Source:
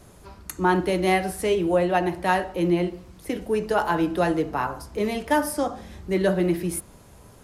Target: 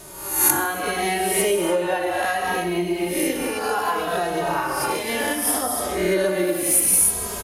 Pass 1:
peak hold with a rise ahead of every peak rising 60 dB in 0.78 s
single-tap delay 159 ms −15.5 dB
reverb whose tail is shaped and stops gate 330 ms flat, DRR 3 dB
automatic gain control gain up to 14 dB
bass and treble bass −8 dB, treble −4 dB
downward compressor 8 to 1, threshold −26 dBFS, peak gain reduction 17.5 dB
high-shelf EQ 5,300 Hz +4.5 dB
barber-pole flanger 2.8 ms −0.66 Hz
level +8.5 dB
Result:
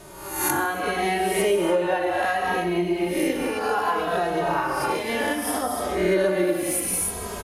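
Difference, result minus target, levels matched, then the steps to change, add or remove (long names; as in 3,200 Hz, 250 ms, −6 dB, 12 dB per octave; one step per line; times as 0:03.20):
8,000 Hz band −6.0 dB
change: high-shelf EQ 5,300 Hz +15.5 dB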